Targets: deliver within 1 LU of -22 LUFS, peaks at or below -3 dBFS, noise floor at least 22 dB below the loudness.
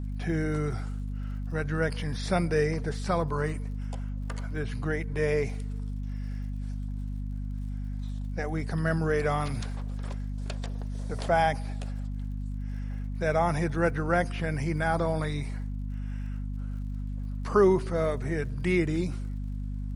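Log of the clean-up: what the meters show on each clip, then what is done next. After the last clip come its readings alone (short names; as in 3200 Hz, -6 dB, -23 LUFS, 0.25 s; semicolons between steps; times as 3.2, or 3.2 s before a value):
ticks 56/s; hum 50 Hz; harmonics up to 250 Hz; hum level -31 dBFS; loudness -30.5 LUFS; peak -10.0 dBFS; loudness target -22.0 LUFS
-> de-click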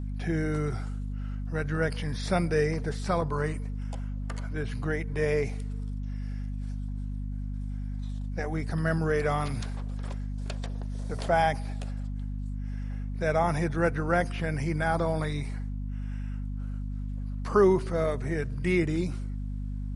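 ticks 0.15/s; hum 50 Hz; harmonics up to 250 Hz; hum level -31 dBFS
-> de-hum 50 Hz, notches 5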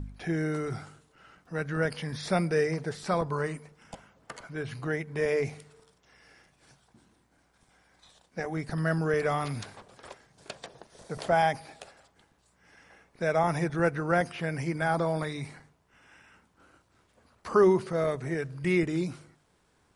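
hum none; loudness -29.5 LUFS; peak -11.0 dBFS; loudness target -22.0 LUFS
-> gain +7.5 dB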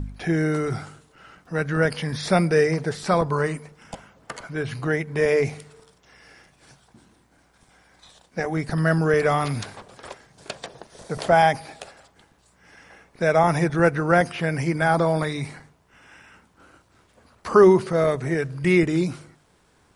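loudness -22.0 LUFS; peak -3.5 dBFS; noise floor -61 dBFS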